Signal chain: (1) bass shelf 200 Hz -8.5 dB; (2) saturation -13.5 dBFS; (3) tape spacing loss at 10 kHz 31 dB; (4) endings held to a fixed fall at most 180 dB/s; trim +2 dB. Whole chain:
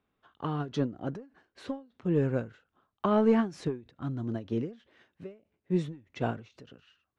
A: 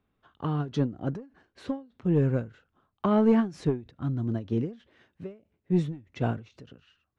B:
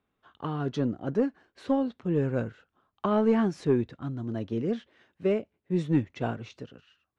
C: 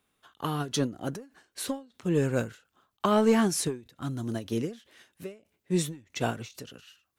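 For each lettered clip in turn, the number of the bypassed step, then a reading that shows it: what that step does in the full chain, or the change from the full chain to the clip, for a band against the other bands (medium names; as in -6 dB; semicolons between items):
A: 1, 125 Hz band +5.0 dB; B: 4, crest factor change -2.5 dB; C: 3, 4 kHz band +9.5 dB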